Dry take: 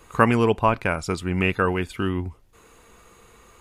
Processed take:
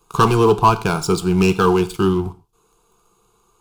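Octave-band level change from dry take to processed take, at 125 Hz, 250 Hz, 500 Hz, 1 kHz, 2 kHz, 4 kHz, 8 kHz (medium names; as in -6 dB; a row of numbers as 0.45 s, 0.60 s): +6.5 dB, +6.0 dB, +6.5 dB, +6.5 dB, -1.0 dB, +7.5 dB, +11.0 dB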